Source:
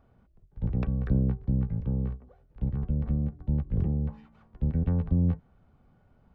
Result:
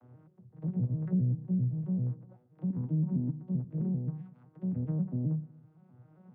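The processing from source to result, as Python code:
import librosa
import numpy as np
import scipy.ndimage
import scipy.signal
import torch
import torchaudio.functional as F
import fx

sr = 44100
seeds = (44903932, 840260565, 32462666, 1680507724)

p1 = fx.vocoder_arp(x, sr, chord='major triad', root=47, every_ms=131)
p2 = fx.hum_notches(p1, sr, base_hz=50, count=4)
p3 = fx.env_lowpass_down(p2, sr, base_hz=480.0, full_db=-24.5)
p4 = fx.small_body(p3, sr, hz=(270.0, 960.0), ring_ms=45, db=11, at=(2.7, 3.41))
p5 = p4 + fx.echo_feedback(p4, sr, ms=122, feedback_pct=42, wet_db=-21.5, dry=0)
y = fx.band_squash(p5, sr, depth_pct=40)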